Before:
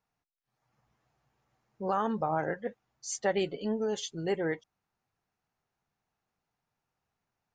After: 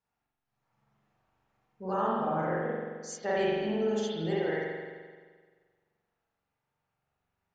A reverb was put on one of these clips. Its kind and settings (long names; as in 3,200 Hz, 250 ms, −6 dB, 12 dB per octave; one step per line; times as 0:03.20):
spring reverb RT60 1.6 s, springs 43 ms, chirp 40 ms, DRR −7 dB
level −6 dB